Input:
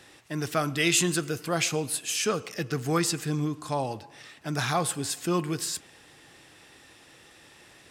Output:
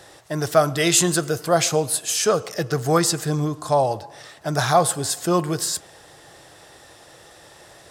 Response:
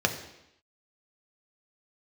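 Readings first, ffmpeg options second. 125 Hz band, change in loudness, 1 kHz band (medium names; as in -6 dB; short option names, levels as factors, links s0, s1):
+6.0 dB, +7.0 dB, +9.5 dB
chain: -af "equalizer=f=250:t=o:w=0.67:g=-8,equalizer=f=630:t=o:w=0.67:g=7,equalizer=f=2500:t=o:w=0.67:g=-9,volume=2.37"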